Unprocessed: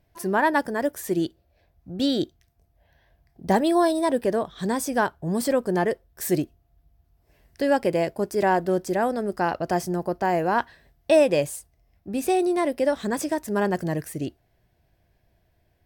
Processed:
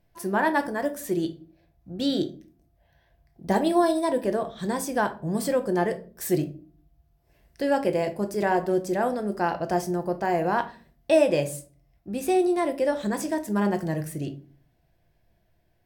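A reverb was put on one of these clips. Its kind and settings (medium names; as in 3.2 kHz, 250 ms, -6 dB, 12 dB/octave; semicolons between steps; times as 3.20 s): simulated room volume 270 m³, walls furnished, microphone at 0.8 m; trim -3 dB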